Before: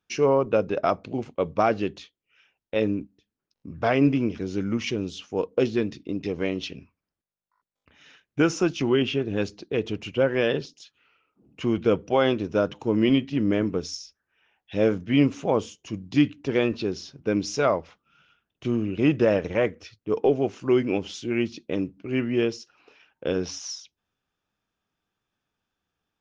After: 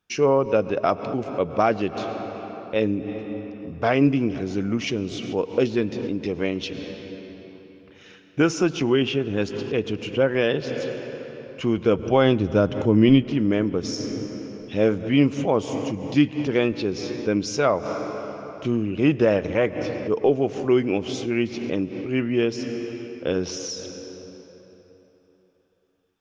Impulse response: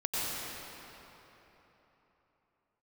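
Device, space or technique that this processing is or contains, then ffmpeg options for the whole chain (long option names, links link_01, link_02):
ducked reverb: -filter_complex "[0:a]asettb=1/sr,asplit=3[link_01][link_02][link_03];[link_01]atrim=end=11.994[link_04];[link_02]atrim=start=11.99:end=13.22,asetpts=PTS-STARTPTS,afade=type=in:duration=0.004:curve=qsin,afade=type=out:start_time=1.226:duration=0.004:curve=qsin,lowshelf=frequency=170:gain=12[link_05];[link_03]atrim=start=13.216[link_06];[link_04][link_05]acrossfade=duration=0.004:curve1=hsin:curve2=qsin[link_07];[link_07][link_06]acrossfade=duration=0.004:curve1=qsin:curve2=hsin,asplit=3[link_08][link_09][link_10];[1:a]atrim=start_sample=2205[link_11];[link_09][link_11]afir=irnorm=-1:irlink=0[link_12];[link_10]apad=whole_len=1155822[link_13];[link_12][link_13]sidechaincompress=threshold=-39dB:ratio=8:attack=24:release=101,volume=-12.5dB[link_14];[link_08][link_14]amix=inputs=2:normalize=0,volume=1.5dB"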